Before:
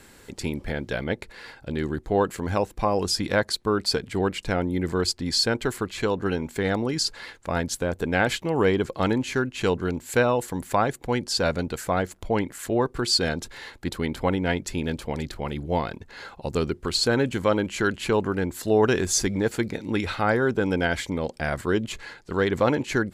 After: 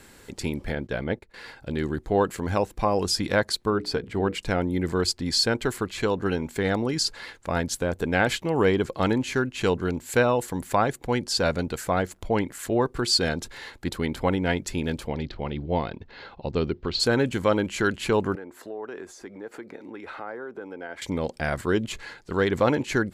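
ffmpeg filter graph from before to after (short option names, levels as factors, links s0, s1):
-filter_complex "[0:a]asettb=1/sr,asplit=3[s0][s1][s2];[s0]atrim=end=0.754[s3];[s1]atrim=start=0.75:end=1.34,asetpts=PTS-STARTPTS,afade=t=in:d=0.004:c=qsin,afade=t=out:st=0.586:d=0.004:c=qsin,highshelf=f=2500:g=-7.5,agate=range=0.2:threshold=0.01:ratio=16:release=100:detection=peak[s4];[s2]atrim=start=1.336[s5];[s3][s4]acrossfade=d=0.004:c1=hsin:c2=qsin[s6];[s6][s5]acrossfade=d=0.004:c1=qsin:c2=hsin,asettb=1/sr,asplit=3[s7][s8][s9];[s7]atrim=end=3.704[s10];[s8]atrim=start=3.7:end=4.35,asetpts=PTS-STARTPTS,afade=t=in:d=0.004:c=qsin,afade=t=out:st=0.646:d=0.004:c=qsin,equalizer=f=10000:t=o:w=2.4:g=-11,bandreject=f=60:t=h:w=6,bandreject=f=120:t=h:w=6,bandreject=f=180:t=h:w=6,bandreject=f=240:t=h:w=6,bandreject=f=300:t=h:w=6,bandreject=f=360:t=h:w=6,bandreject=f=420:t=h:w=6,bandreject=f=480:t=h:w=6[s11];[s9]atrim=start=4.346[s12];[s10][s11]acrossfade=d=0.004:c1=hsin:c2=qsin[s13];[s13][s12]acrossfade=d=0.004:c1=qsin:c2=hsin,asettb=1/sr,asplit=3[s14][s15][s16];[s14]atrim=end=15.084[s17];[s15]atrim=start=15.08:end=17,asetpts=PTS-STARTPTS,afade=t=in:d=0.004:c=qsin,afade=t=out:st=1.916:d=0.004:c=qsin,lowpass=f=4400:w=0.5412,lowpass=f=4400:w=1.3066,equalizer=f=1500:t=o:w=1.3:g=-4[s18];[s16]atrim=start=16.996[s19];[s17][s18]acrossfade=d=0.004:c1=hsin:c2=qsin[s20];[s20][s19]acrossfade=d=0.004:c1=qsin:c2=hsin,asettb=1/sr,asplit=3[s21][s22][s23];[s21]atrim=end=18.354[s24];[s22]atrim=start=18.35:end=21.02,asetpts=PTS-STARTPTS,afade=t=in:d=0.004:c=qsin,afade=t=out:st=2.666:d=0.004:c=qsin,acompressor=threshold=0.0316:ratio=6:attack=3.2:release=140:knee=1:detection=peak,acrossover=split=280 2000:gain=0.0794 1 0.178[s25][s26][s27];[s25][s26][s27]amix=inputs=3:normalize=0[s28];[s23]atrim=start=21.016[s29];[s24][s28]acrossfade=d=0.004:c1=hsin:c2=qsin[s30];[s30][s29]acrossfade=d=0.004:c1=qsin:c2=hsin"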